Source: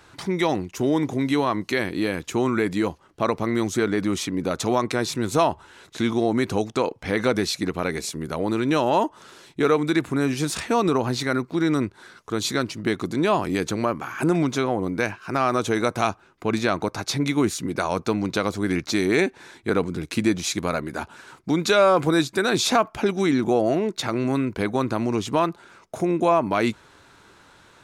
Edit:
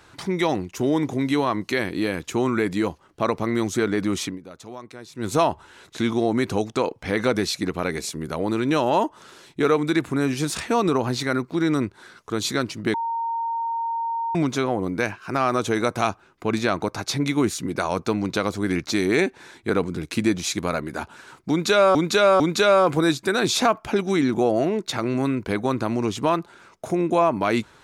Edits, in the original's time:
0:04.27–0:05.27: duck −16.5 dB, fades 0.12 s
0:12.94–0:14.35: beep over 921 Hz −23 dBFS
0:21.50–0:21.95: repeat, 3 plays

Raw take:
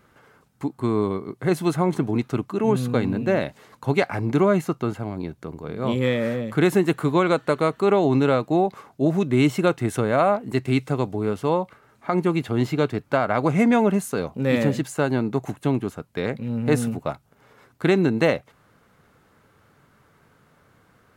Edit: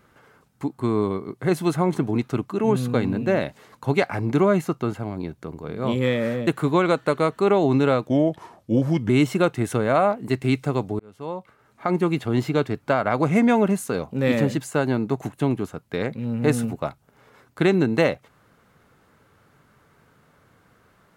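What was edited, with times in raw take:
0:06.47–0:06.88: remove
0:08.48–0:09.33: play speed 83%
0:11.23–0:12.15: fade in

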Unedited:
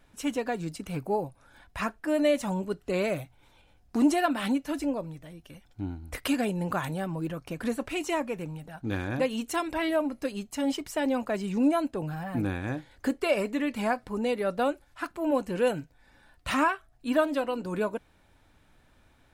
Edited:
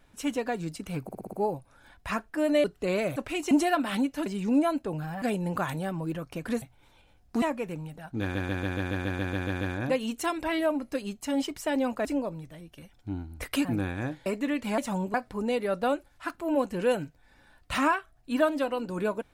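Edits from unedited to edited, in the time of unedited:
0:01.03: stutter 0.06 s, 6 plays
0:02.34–0:02.70: move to 0:13.90
0:03.22–0:04.02: swap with 0:07.77–0:08.12
0:04.77–0:06.37: swap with 0:11.35–0:12.31
0:08.91: stutter 0.14 s, 11 plays
0:12.92–0:13.38: remove

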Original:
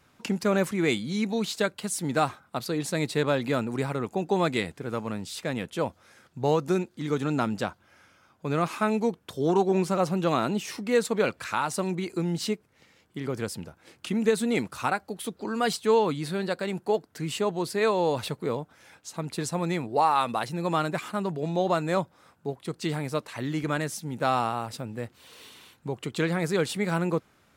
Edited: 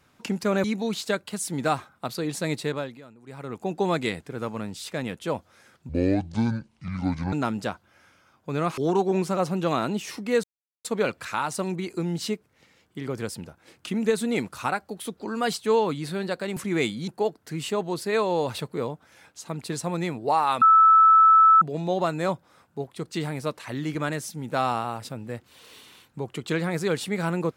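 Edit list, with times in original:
0:00.64–0:01.15: move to 0:16.76
0:03.06–0:04.22: duck −21 dB, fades 0.46 s
0:06.40–0:07.29: play speed 62%
0:08.74–0:09.38: remove
0:11.04: splice in silence 0.41 s
0:20.30–0:21.30: beep over 1,310 Hz −11.5 dBFS

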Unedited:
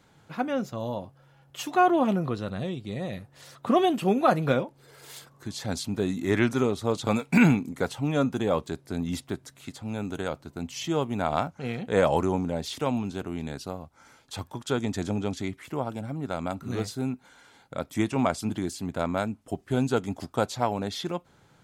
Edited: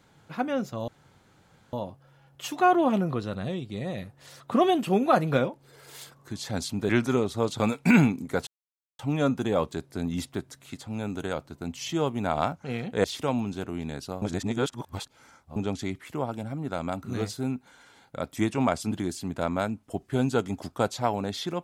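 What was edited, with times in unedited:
0:00.88: splice in room tone 0.85 s
0:06.04–0:06.36: remove
0:07.94: splice in silence 0.52 s
0:11.99–0:12.62: remove
0:13.80–0:15.14: reverse

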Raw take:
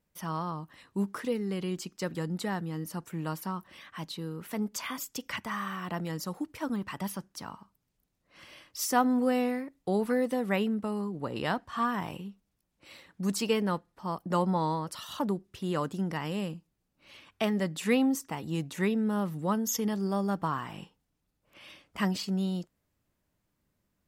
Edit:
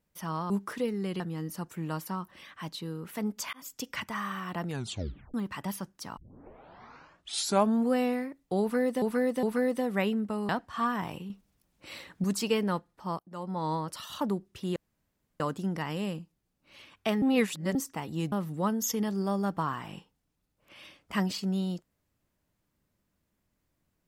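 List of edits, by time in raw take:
0:00.50–0:00.97: remove
0:01.67–0:02.56: remove
0:04.89–0:05.14: fade in
0:06.03: tape stop 0.67 s
0:07.53: tape start 1.75 s
0:09.97–0:10.38: repeat, 3 plays
0:11.03–0:11.48: remove
0:12.29–0:13.23: clip gain +7 dB
0:14.18–0:14.73: fade in quadratic, from −17.5 dB
0:15.75: splice in room tone 0.64 s
0:17.57–0:18.10: reverse
0:18.67–0:19.17: remove

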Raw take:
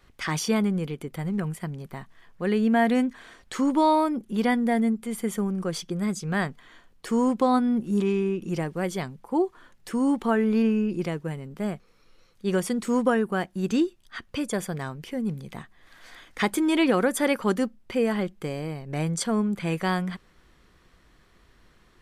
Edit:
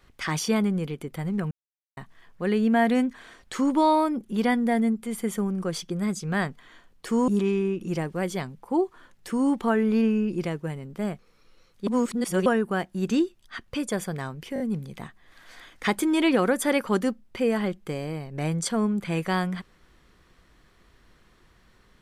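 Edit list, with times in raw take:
0:01.51–0:01.97: silence
0:07.28–0:07.89: remove
0:12.48–0:13.07: reverse
0:15.15: stutter 0.02 s, 4 plays

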